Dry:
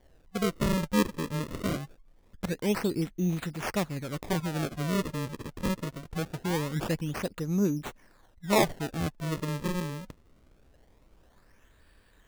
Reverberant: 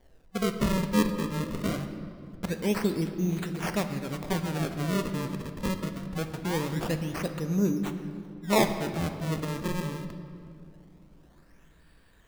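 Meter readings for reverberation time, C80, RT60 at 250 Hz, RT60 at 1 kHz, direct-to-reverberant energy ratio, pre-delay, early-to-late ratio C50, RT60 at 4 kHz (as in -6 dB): 2.5 s, 10.0 dB, 3.8 s, 2.3 s, 7.0 dB, 4 ms, 9.0 dB, 1.6 s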